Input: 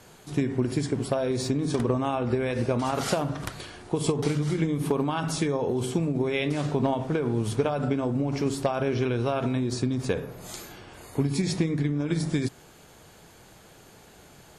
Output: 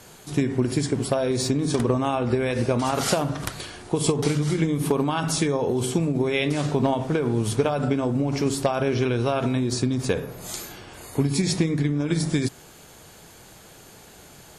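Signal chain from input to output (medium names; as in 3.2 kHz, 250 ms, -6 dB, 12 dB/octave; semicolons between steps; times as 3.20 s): treble shelf 4.3 kHz +5.5 dB; trim +3 dB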